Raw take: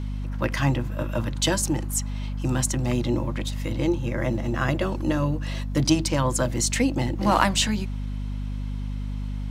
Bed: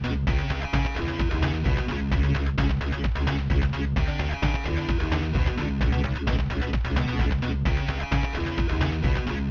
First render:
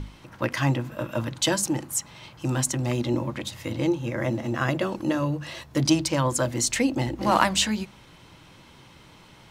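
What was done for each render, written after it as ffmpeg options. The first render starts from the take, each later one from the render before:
-af "bandreject=f=50:t=h:w=6,bandreject=f=100:t=h:w=6,bandreject=f=150:t=h:w=6,bandreject=f=200:t=h:w=6,bandreject=f=250:t=h:w=6"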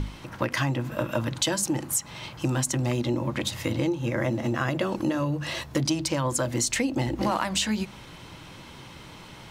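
-filter_complex "[0:a]asplit=2[s0][s1];[s1]alimiter=limit=0.188:level=0:latency=1:release=113,volume=1[s2];[s0][s2]amix=inputs=2:normalize=0,acompressor=threshold=0.0708:ratio=5"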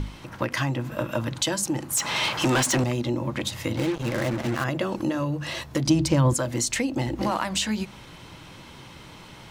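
-filter_complex "[0:a]asettb=1/sr,asplit=3[s0][s1][s2];[s0]atrim=end=1.974[s3];[s1]atrim=start=1.97:end=2.84,asetpts=PTS-STARTPTS,afade=t=in:d=0.004:c=qsin,afade=t=out:st=0.866:d=0.004:c=qsin,asplit=2[s4][s5];[s5]highpass=f=720:p=1,volume=17.8,asoftclip=type=tanh:threshold=0.211[s6];[s4][s6]amix=inputs=2:normalize=0,lowpass=f=5600:p=1,volume=0.501[s7];[s2]atrim=start=2.836[s8];[s3][s7]acrossfade=d=0.004:c1=hsin:c2=qsin[s9];[s9][s8]acrossfade=d=0.004:c1=qsin:c2=hsin,asettb=1/sr,asplit=3[s10][s11][s12];[s10]atrim=end=3.774[s13];[s11]atrim=start=3.77:end=4.64,asetpts=PTS-STARTPTS,afade=t=in:d=0.004:c=qsin,afade=t=out:st=0.866:d=0.004:c=qsin,acrusher=bits=4:mix=0:aa=0.5[s14];[s12]atrim=start=4.636[s15];[s13][s14]acrossfade=d=0.004:c1=hsin:c2=qsin[s16];[s16][s15]acrossfade=d=0.004:c1=qsin:c2=hsin,asettb=1/sr,asplit=3[s17][s18][s19];[s17]atrim=end=5.874[s20];[s18]atrim=start=5.87:end=6.34,asetpts=PTS-STARTPTS,afade=t=in:d=0.004:c=qsin,afade=t=out:st=0.466:d=0.004:c=qsin,lowshelf=f=340:g=12[s21];[s19]atrim=start=6.336[s22];[s20][s21]acrossfade=d=0.004:c1=hsin:c2=qsin[s23];[s23][s22]acrossfade=d=0.004:c1=qsin:c2=hsin"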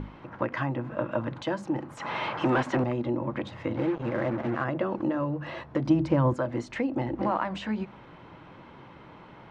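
-af "lowpass=1500,lowshelf=f=120:g=-11.5"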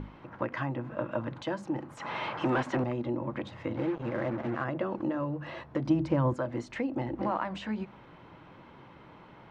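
-af "volume=0.668"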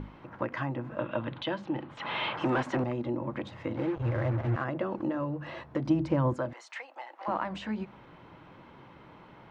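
-filter_complex "[0:a]asettb=1/sr,asplit=3[s0][s1][s2];[s0]atrim=end=0.994[s3];[s1]atrim=start=0.99:end=2.36,asetpts=PTS-STARTPTS,afade=t=in:d=0.004:c=qsin,afade=t=out:st=1.366:d=0.004:c=qsin,lowpass=f=3400:t=q:w=2.8[s4];[s2]atrim=start=2.356[s5];[s3][s4]acrossfade=d=0.004:c1=hsin:c2=qsin[s6];[s6][s5]acrossfade=d=0.004:c1=qsin:c2=hsin,asettb=1/sr,asplit=3[s7][s8][s9];[s7]atrim=end=3.964[s10];[s8]atrim=start=3.96:end=4.56,asetpts=PTS-STARTPTS,afade=t=in:d=0.004:c=qsin,afade=t=out:st=0.596:d=0.004:c=qsin,lowshelf=f=140:t=q:w=3:g=9[s11];[s9]atrim=start=4.556[s12];[s10][s11]acrossfade=d=0.004:c1=hsin:c2=qsin[s13];[s13][s12]acrossfade=d=0.004:c1=qsin:c2=hsin,asettb=1/sr,asplit=3[s14][s15][s16];[s14]atrim=end=6.534[s17];[s15]atrim=start=6.53:end=7.28,asetpts=PTS-STARTPTS,afade=t=in:d=0.004:c=qsin,afade=t=out:st=0.746:d=0.004:c=qsin,highpass=f=750:w=0.5412,highpass=f=750:w=1.3066[s18];[s16]atrim=start=7.276[s19];[s17][s18]acrossfade=d=0.004:c1=hsin:c2=qsin[s20];[s20][s19]acrossfade=d=0.004:c1=qsin:c2=hsin"

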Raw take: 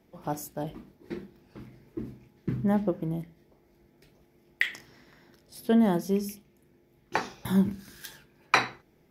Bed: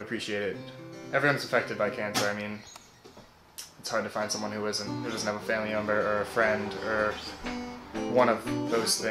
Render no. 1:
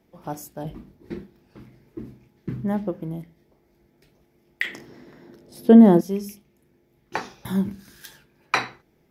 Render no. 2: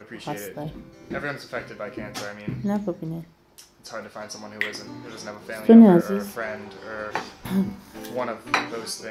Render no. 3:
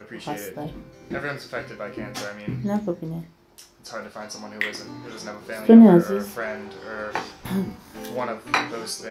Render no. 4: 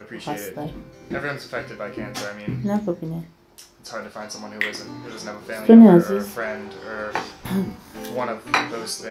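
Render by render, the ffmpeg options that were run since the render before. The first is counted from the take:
-filter_complex "[0:a]asettb=1/sr,asplit=3[s0][s1][s2];[s0]atrim=end=0.654[s3];[s1]atrim=start=0.65:end=1.23,asetpts=PTS-STARTPTS,afade=t=in:d=0.004:c=qsin,afade=t=out:st=0.576:d=0.004:c=qsin,lowshelf=f=210:g=9[s4];[s2]atrim=start=1.226[s5];[s3][s4]acrossfade=d=0.004:c1=hsin:c2=qsin[s6];[s6][s5]acrossfade=d=0.004:c1=qsin:c2=hsin,asettb=1/sr,asplit=3[s7][s8][s9];[s7]atrim=end=4.644[s10];[s8]atrim=start=4.64:end=6.01,asetpts=PTS-STARTPTS,afade=t=in:d=0.004:c=qsin,afade=t=out:st=1.366:d=0.004:c=qsin,equalizer=f=320:w=0.43:g=13[s11];[s9]atrim=start=6.006[s12];[s10][s11]acrossfade=d=0.004:c1=hsin:c2=qsin[s13];[s13][s12]acrossfade=d=0.004:c1=qsin:c2=hsin"
-filter_complex "[1:a]volume=0.531[s0];[0:a][s0]amix=inputs=2:normalize=0"
-filter_complex "[0:a]asplit=2[s0][s1];[s1]adelay=23,volume=0.447[s2];[s0][s2]amix=inputs=2:normalize=0"
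-af "volume=1.26,alimiter=limit=0.891:level=0:latency=1"

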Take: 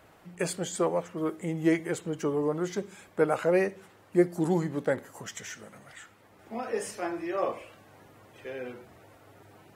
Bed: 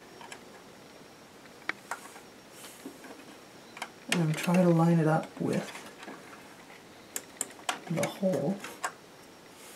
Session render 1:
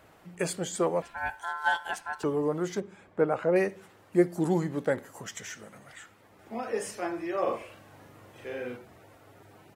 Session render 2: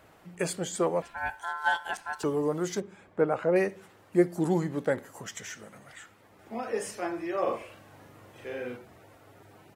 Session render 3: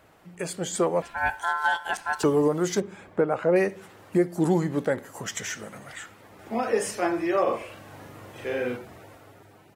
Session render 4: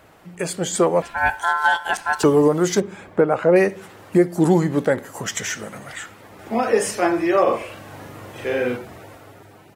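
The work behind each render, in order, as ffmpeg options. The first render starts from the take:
-filter_complex "[0:a]asettb=1/sr,asplit=3[s0][s1][s2];[s0]atrim=end=1.024[s3];[s1]atrim=start=1.02:end=2.24,asetpts=PTS-STARTPTS,afade=t=in:d=0.004:c=qsin,afade=t=out:st=1.216:d=0.004:c=qsin,aeval=exprs='val(0)*sin(2*PI*1200*n/s)':c=same[s4];[s2]atrim=start=2.236[s5];[s3][s4]acrossfade=d=0.004:c1=hsin:c2=qsin[s6];[s6][s5]acrossfade=d=0.004:c1=qsin:c2=hsin,asettb=1/sr,asplit=3[s7][s8][s9];[s7]atrim=end=2.804[s10];[s8]atrim=start=2.8:end=3.56,asetpts=PTS-STARTPTS,afade=t=in:d=0.004:c=qsin,afade=t=out:st=0.756:d=0.004:c=qsin,lowpass=f=1400:p=1[s11];[s9]atrim=start=3.556[s12];[s10][s11]acrossfade=d=0.004:c1=hsin:c2=qsin[s13];[s13][s12]acrossfade=d=0.004:c1=qsin:c2=hsin,asplit=3[s14][s15][s16];[s14]afade=t=out:st=7.46:d=0.02[s17];[s15]asplit=2[s18][s19];[s19]adelay=41,volume=0.708[s20];[s18][s20]amix=inputs=2:normalize=0,afade=t=in:st=7.46:d=0.02,afade=t=out:st=8.76:d=0.02[s21];[s16]afade=t=in:st=8.76:d=0.02[s22];[s17][s21][s22]amix=inputs=3:normalize=0"
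-filter_complex "[0:a]asettb=1/sr,asplit=3[s0][s1][s2];[s0]atrim=end=1.974[s3];[s1]atrim=start=1.97:end=2.82,asetpts=PTS-STARTPTS,afade=t=in:d=0.004:c=qsin,afade=t=out:st=0.846:d=0.004:c=qsin,adynamicequalizer=threshold=0.00251:dfrequency=3600:dqfactor=0.7:tfrequency=3600:tqfactor=0.7:attack=5:release=100:ratio=0.375:range=3:mode=boostabove:tftype=highshelf[s4];[s2]atrim=start=2.816[s5];[s3][s4]acrossfade=d=0.004:c1=hsin:c2=qsin[s6];[s6][s5]acrossfade=d=0.004:c1=qsin:c2=hsin"
-af "alimiter=limit=0.0944:level=0:latency=1:release=478,dynaudnorm=f=100:g=13:m=2.51"
-af "volume=2.11"

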